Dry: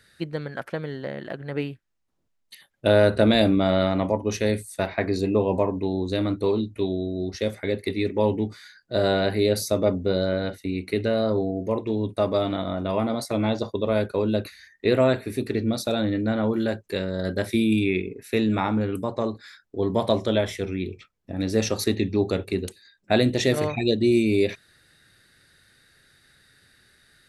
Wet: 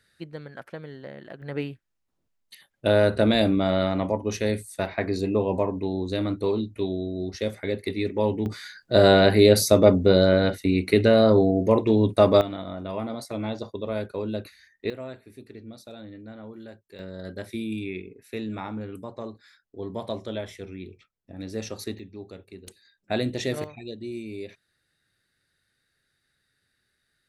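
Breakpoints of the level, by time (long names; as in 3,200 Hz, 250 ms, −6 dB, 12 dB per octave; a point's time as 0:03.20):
−8 dB
from 0:01.42 −2 dB
from 0:08.46 +6 dB
from 0:12.41 −6.5 dB
from 0:14.90 −18 dB
from 0:16.99 −10 dB
from 0:21.99 −18 dB
from 0:22.67 −6.5 dB
from 0:23.64 −15.5 dB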